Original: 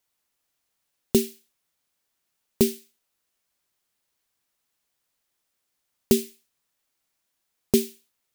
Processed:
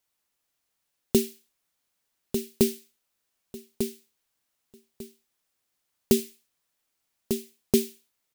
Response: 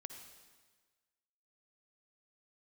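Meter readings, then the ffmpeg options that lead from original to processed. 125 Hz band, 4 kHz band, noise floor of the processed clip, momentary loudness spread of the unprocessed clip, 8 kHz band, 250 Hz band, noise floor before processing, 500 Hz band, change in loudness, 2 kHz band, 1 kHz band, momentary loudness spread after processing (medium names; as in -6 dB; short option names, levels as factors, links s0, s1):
-1.0 dB, -1.0 dB, -80 dBFS, 14 LU, -1.0 dB, -1.0 dB, -78 dBFS, -1.0 dB, -3.0 dB, -1.0 dB, -1.0 dB, 21 LU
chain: -af "aecho=1:1:1197|2394|3591:0.447|0.0983|0.0216,volume=0.841"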